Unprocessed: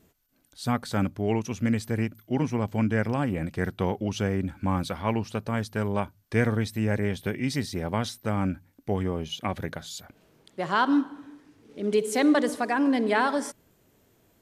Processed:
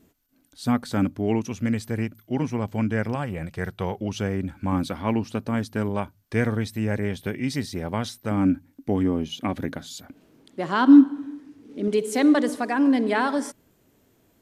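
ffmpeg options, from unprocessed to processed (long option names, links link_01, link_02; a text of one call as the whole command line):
ffmpeg -i in.wav -af "asetnsamples=nb_out_samples=441:pad=0,asendcmd='1.49 equalizer g 1;3.15 equalizer g -9.5;3.97 equalizer g 1;4.72 equalizer g 9.5;5.89 equalizer g 2;8.31 equalizer g 13;11.88 equalizer g 4.5',equalizer=frequency=270:width_type=o:width=0.55:gain=8.5" out.wav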